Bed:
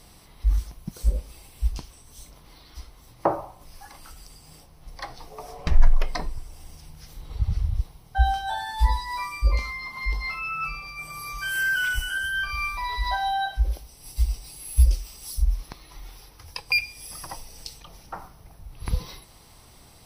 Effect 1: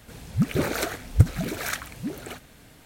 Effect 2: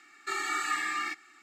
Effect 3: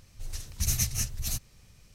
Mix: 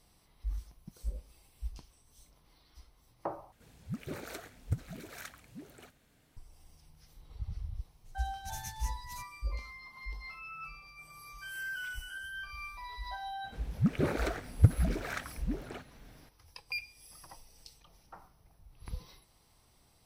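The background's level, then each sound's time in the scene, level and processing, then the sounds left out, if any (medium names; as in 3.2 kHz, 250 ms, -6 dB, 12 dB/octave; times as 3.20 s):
bed -15 dB
3.52 s: replace with 1 -16.5 dB
7.85 s: add 3 -16.5 dB
13.44 s: add 1 -5 dB + low-pass 1.9 kHz 6 dB/octave
not used: 2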